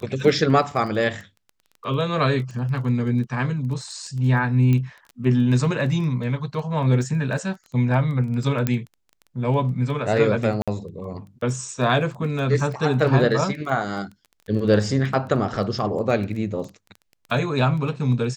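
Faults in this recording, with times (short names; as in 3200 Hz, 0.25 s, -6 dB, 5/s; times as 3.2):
crackle 11/s -30 dBFS
4.73 pop -13 dBFS
8.67 pop -8 dBFS
10.62–10.68 gap 56 ms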